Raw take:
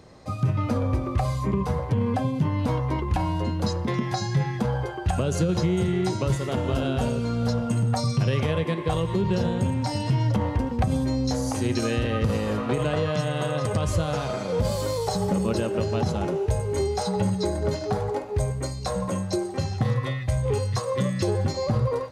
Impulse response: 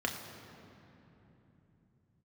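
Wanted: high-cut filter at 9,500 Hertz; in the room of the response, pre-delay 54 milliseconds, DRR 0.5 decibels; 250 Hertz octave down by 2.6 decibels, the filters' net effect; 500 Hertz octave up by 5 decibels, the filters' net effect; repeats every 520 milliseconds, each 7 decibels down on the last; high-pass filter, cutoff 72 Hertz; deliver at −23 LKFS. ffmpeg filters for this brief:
-filter_complex "[0:a]highpass=72,lowpass=9500,equalizer=frequency=250:width_type=o:gain=-6,equalizer=frequency=500:width_type=o:gain=7.5,aecho=1:1:520|1040|1560|2080|2600:0.447|0.201|0.0905|0.0407|0.0183,asplit=2[link_01][link_02];[1:a]atrim=start_sample=2205,adelay=54[link_03];[link_02][link_03]afir=irnorm=-1:irlink=0,volume=-7dB[link_04];[link_01][link_04]amix=inputs=2:normalize=0,volume=-3dB"

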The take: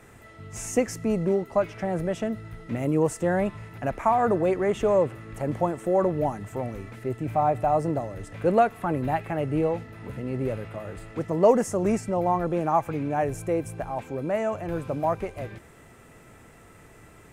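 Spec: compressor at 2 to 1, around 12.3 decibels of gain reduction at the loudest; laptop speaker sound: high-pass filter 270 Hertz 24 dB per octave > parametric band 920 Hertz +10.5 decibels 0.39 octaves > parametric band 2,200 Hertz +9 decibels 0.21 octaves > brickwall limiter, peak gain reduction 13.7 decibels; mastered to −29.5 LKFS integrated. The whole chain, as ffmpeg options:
ffmpeg -i in.wav -af "acompressor=threshold=-37dB:ratio=2,highpass=frequency=270:width=0.5412,highpass=frequency=270:width=1.3066,equalizer=frequency=920:width_type=o:width=0.39:gain=10.5,equalizer=frequency=2200:width_type=o:width=0.21:gain=9,volume=8.5dB,alimiter=limit=-19dB:level=0:latency=1" out.wav

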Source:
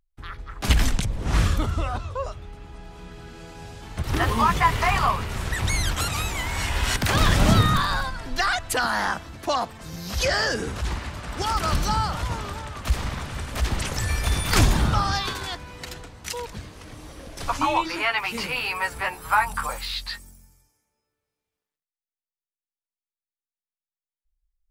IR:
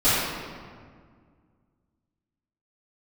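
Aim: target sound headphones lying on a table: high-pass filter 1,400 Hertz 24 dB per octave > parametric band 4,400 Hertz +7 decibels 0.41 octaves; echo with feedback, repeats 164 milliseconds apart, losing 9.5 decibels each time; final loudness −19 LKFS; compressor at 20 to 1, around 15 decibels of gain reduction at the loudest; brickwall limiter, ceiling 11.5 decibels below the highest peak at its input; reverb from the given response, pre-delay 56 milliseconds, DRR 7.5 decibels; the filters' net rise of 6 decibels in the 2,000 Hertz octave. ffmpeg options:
-filter_complex "[0:a]equalizer=frequency=2000:width_type=o:gain=8,acompressor=threshold=-27dB:ratio=20,alimiter=level_in=2.5dB:limit=-24dB:level=0:latency=1,volume=-2.5dB,aecho=1:1:164|328|492|656:0.335|0.111|0.0365|0.012,asplit=2[link_01][link_02];[1:a]atrim=start_sample=2205,adelay=56[link_03];[link_02][link_03]afir=irnorm=-1:irlink=0,volume=-26.5dB[link_04];[link_01][link_04]amix=inputs=2:normalize=0,highpass=frequency=1400:width=0.5412,highpass=frequency=1400:width=1.3066,equalizer=frequency=4400:width_type=o:width=0.41:gain=7,volume=17dB"

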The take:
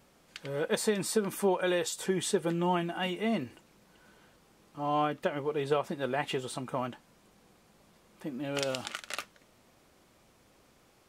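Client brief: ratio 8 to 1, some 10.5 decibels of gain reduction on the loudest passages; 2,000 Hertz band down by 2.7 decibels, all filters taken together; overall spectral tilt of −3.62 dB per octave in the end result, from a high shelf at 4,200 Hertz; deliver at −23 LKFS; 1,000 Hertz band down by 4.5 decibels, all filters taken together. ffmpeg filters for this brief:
ffmpeg -i in.wav -af "equalizer=frequency=1000:width_type=o:gain=-6,equalizer=frequency=2000:width_type=o:gain=-3,highshelf=frequency=4200:gain=6.5,acompressor=threshold=-34dB:ratio=8,volume=16dB" out.wav

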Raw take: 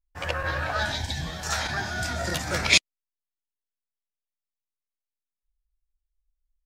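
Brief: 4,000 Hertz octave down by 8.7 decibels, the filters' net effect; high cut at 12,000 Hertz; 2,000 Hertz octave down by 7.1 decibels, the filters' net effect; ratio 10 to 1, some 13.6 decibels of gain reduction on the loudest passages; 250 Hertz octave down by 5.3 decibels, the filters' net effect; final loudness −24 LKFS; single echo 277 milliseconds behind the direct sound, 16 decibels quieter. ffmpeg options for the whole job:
ffmpeg -i in.wav -af "lowpass=12000,equalizer=frequency=250:width_type=o:gain=-8.5,equalizer=frequency=2000:width_type=o:gain=-7,equalizer=frequency=4000:width_type=o:gain=-9,acompressor=threshold=-34dB:ratio=10,aecho=1:1:277:0.158,volume=14dB" out.wav

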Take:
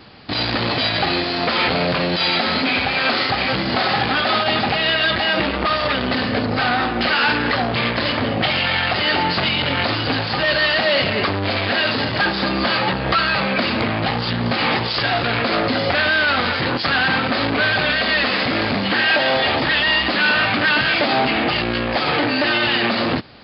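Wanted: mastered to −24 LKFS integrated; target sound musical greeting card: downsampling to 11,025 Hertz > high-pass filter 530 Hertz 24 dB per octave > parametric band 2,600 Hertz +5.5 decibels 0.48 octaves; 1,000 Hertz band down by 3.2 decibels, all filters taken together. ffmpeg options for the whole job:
ffmpeg -i in.wav -af "equalizer=frequency=1000:width_type=o:gain=-4.5,aresample=11025,aresample=44100,highpass=frequency=530:width=0.5412,highpass=frequency=530:width=1.3066,equalizer=frequency=2600:width_type=o:width=0.48:gain=5.5,volume=-6.5dB" out.wav

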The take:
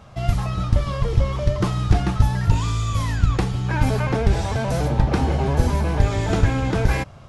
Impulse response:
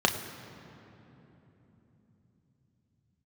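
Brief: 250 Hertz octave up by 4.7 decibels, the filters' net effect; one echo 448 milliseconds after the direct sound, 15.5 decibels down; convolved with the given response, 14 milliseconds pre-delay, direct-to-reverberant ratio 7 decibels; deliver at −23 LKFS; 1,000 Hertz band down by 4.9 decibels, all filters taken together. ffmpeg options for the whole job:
-filter_complex "[0:a]equalizer=frequency=250:width_type=o:gain=7,equalizer=frequency=1000:width_type=o:gain=-7,aecho=1:1:448:0.168,asplit=2[link_01][link_02];[1:a]atrim=start_sample=2205,adelay=14[link_03];[link_02][link_03]afir=irnorm=-1:irlink=0,volume=-20.5dB[link_04];[link_01][link_04]amix=inputs=2:normalize=0,volume=-3.5dB"

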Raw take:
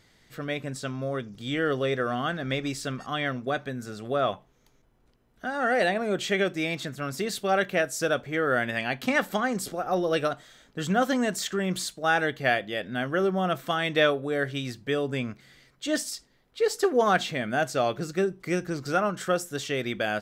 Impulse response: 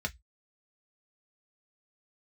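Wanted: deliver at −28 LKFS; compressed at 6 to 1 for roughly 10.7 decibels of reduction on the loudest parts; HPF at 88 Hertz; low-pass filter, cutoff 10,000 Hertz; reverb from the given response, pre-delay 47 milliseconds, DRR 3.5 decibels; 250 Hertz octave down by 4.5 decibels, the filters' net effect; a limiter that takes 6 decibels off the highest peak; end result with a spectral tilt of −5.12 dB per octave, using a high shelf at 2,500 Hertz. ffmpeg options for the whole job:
-filter_complex "[0:a]highpass=88,lowpass=10000,equalizer=frequency=250:width_type=o:gain=-6,highshelf=frequency=2500:gain=-7,acompressor=threshold=-31dB:ratio=6,alimiter=level_in=2dB:limit=-24dB:level=0:latency=1,volume=-2dB,asplit=2[link_01][link_02];[1:a]atrim=start_sample=2205,adelay=47[link_03];[link_02][link_03]afir=irnorm=-1:irlink=0,volume=-7.5dB[link_04];[link_01][link_04]amix=inputs=2:normalize=0,volume=7.5dB"

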